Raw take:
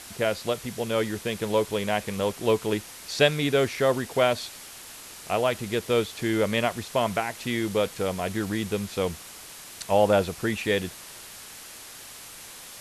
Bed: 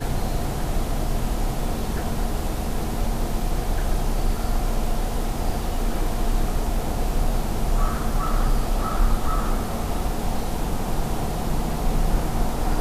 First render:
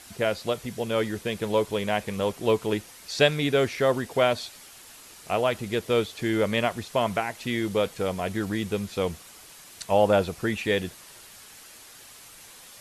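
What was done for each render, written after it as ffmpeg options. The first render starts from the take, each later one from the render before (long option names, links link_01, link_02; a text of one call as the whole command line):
ffmpeg -i in.wav -af "afftdn=noise_reduction=6:noise_floor=-44" out.wav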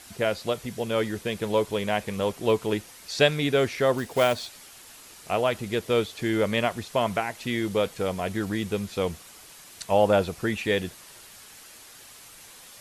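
ffmpeg -i in.wav -filter_complex "[0:a]asettb=1/sr,asplit=3[link_01][link_02][link_03];[link_01]atrim=end=3.984[link_04];[link_02]atrim=start=3.98:end=4.47,asetpts=PTS-STARTPTS,afade=type=in:duration=0.004:curve=qsin,afade=type=out:start_time=0.486:duration=0.004:curve=qsin,acrusher=bits=4:mode=log:mix=0:aa=0.000001[link_05];[link_03]atrim=start=4.466[link_06];[link_04][link_05]acrossfade=duration=0.004:curve1=hsin:curve2=qsin[link_07];[link_07][link_06]acrossfade=duration=0.004:curve1=qsin:curve2=hsin" out.wav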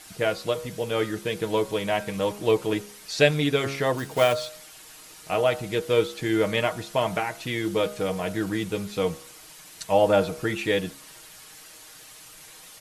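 ffmpeg -i in.wav -af "aecho=1:1:6.4:0.54,bandreject=frequency=68.65:width_type=h:width=4,bandreject=frequency=137.3:width_type=h:width=4,bandreject=frequency=205.95:width_type=h:width=4,bandreject=frequency=274.6:width_type=h:width=4,bandreject=frequency=343.25:width_type=h:width=4,bandreject=frequency=411.9:width_type=h:width=4,bandreject=frequency=480.55:width_type=h:width=4,bandreject=frequency=549.2:width_type=h:width=4,bandreject=frequency=617.85:width_type=h:width=4,bandreject=frequency=686.5:width_type=h:width=4,bandreject=frequency=755.15:width_type=h:width=4,bandreject=frequency=823.8:width_type=h:width=4,bandreject=frequency=892.45:width_type=h:width=4,bandreject=frequency=961.1:width_type=h:width=4,bandreject=frequency=1029.75:width_type=h:width=4,bandreject=frequency=1098.4:width_type=h:width=4,bandreject=frequency=1167.05:width_type=h:width=4,bandreject=frequency=1235.7:width_type=h:width=4,bandreject=frequency=1304.35:width_type=h:width=4,bandreject=frequency=1373:width_type=h:width=4,bandreject=frequency=1441.65:width_type=h:width=4,bandreject=frequency=1510.3:width_type=h:width=4,bandreject=frequency=1578.95:width_type=h:width=4" out.wav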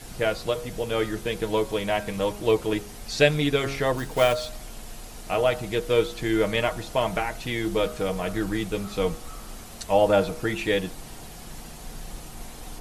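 ffmpeg -i in.wav -i bed.wav -filter_complex "[1:a]volume=-17.5dB[link_01];[0:a][link_01]amix=inputs=2:normalize=0" out.wav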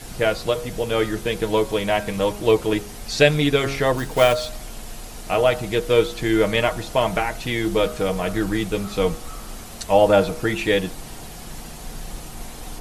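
ffmpeg -i in.wav -af "volume=4.5dB,alimiter=limit=-3dB:level=0:latency=1" out.wav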